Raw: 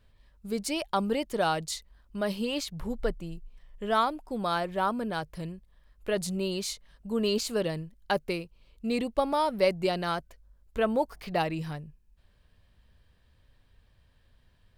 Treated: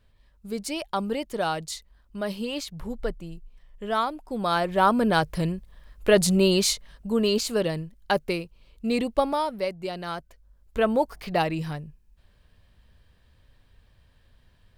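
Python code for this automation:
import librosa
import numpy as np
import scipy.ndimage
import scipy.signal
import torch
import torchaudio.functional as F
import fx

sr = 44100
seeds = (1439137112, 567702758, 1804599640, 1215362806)

y = fx.gain(x, sr, db=fx.line((4.11, 0.0), (5.11, 11.0), (6.68, 11.0), (7.28, 4.0), (9.21, 4.0), (9.74, -6.0), (10.78, 4.0)))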